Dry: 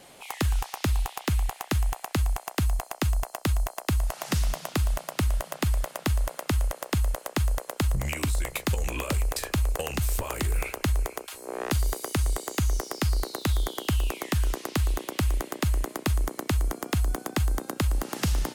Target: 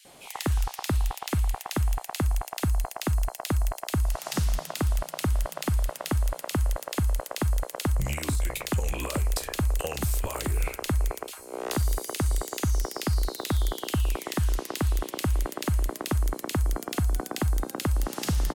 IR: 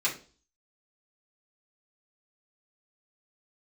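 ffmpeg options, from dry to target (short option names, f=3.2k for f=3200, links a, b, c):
-filter_complex "[0:a]acrossover=split=2100[a][b];[a]adelay=50[c];[c][b]amix=inputs=2:normalize=0"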